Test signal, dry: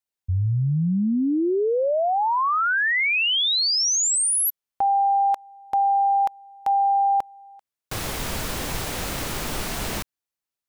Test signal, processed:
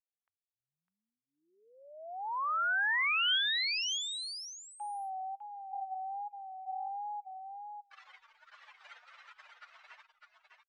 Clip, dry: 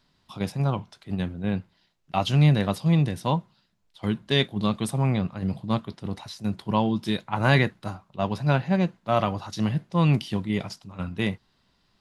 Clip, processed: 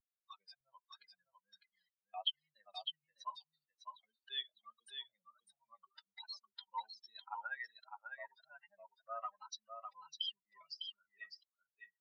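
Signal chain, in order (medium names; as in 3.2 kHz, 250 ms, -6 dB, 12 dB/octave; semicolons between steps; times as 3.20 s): spectral contrast enhancement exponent 2.9; gate -46 dBFS, range -7 dB; inverse Chebyshev high-pass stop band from 290 Hz, stop band 70 dB; spectral noise reduction 18 dB; dynamic bell 3.1 kHz, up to +7 dB, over -48 dBFS, Q 5.3; compression 2:1, threshold -33 dBFS; vibrato 1.3 Hz 83 cents; distance through air 180 m; delay 604 ms -6 dB; resampled via 22.05 kHz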